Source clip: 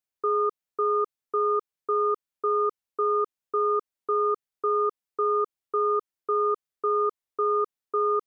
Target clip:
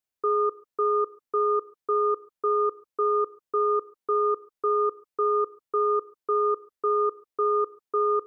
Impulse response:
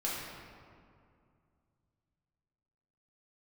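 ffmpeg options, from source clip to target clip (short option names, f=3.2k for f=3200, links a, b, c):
-filter_complex "[0:a]asplit=2[a][b];[b]lowpass=1.2k[c];[1:a]atrim=start_sample=2205,atrim=end_sample=6615[d];[c][d]afir=irnorm=-1:irlink=0,volume=-18dB[e];[a][e]amix=inputs=2:normalize=0"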